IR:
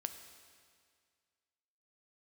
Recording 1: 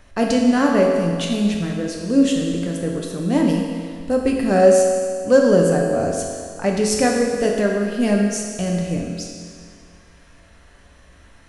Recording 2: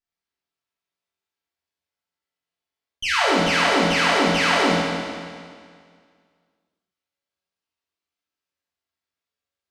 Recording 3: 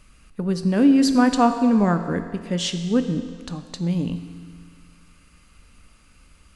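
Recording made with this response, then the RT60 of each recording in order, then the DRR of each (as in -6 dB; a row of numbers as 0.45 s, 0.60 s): 3; 2.0 s, 2.0 s, 2.0 s; -1.0 dB, -8.0 dB, 7.5 dB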